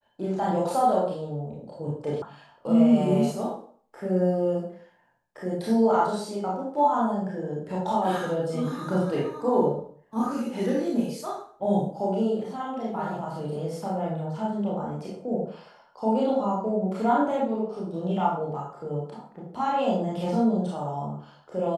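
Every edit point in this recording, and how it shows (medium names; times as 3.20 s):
2.22 s: sound stops dead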